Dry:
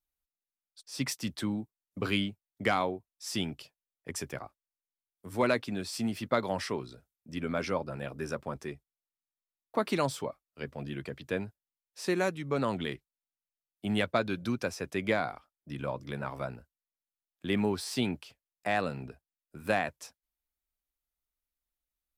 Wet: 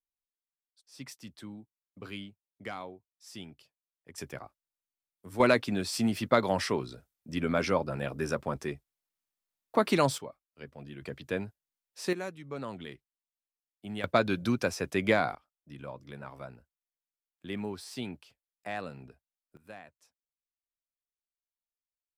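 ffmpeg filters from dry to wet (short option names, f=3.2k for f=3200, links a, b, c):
-af "asetnsamples=n=441:p=0,asendcmd='4.18 volume volume -2.5dB;5.4 volume volume 4dB;10.18 volume volume -7dB;11.02 volume volume 0dB;12.13 volume volume -8.5dB;14.04 volume volume 3.5dB;15.35 volume volume -7.5dB;19.57 volume volume -19dB',volume=-12dB"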